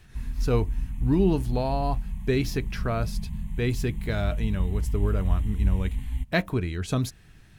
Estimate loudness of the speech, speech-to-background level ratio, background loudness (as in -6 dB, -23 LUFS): -28.5 LUFS, 3.5 dB, -32.0 LUFS